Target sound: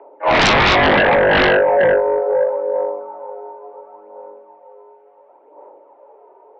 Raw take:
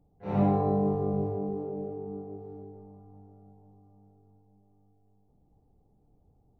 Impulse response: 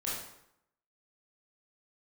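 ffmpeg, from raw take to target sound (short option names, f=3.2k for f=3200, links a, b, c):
-filter_complex "[0:a]aphaser=in_gain=1:out_gain=1:delay=3.7:decay=0.57:speed=0.71:type=sinusoidal,highpass=f=350:t=q:w=0.5412,highpass=f=350:t=q:w=1.307,lowpass=f=2.3k:t=q:w=0.5176,lowpass=f=2.3k:t=q:w=0.7071,lowpass=f=2.3k:t=q:w=1.932,afreqshift=120,asplit=2[a][b];[1:a]atrim=start_sample=2205,atrim=end_sample=6174,lowshelf=f=400:g=3.5[c];[b][c]afir=irnorm=-1:irlink=0,volume=-5.5dB[d];[a][d]amix=inputs=2:normalize=0,aeval=exprs='0.188*sin(PI/2*5.62*val(0)/0.188)':c=same,volume=5dB"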